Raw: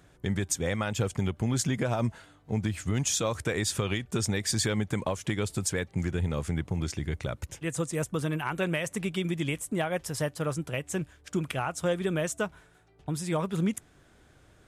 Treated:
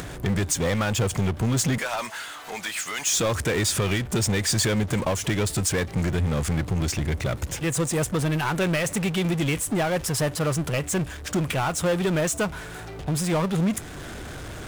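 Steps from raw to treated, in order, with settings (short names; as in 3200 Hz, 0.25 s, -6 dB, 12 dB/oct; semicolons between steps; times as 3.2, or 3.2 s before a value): 1.78–3.17 HPF 1100 Hz 12 dB/oct; power-law curve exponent 0.5; upward compressor, threshold -33 dBFS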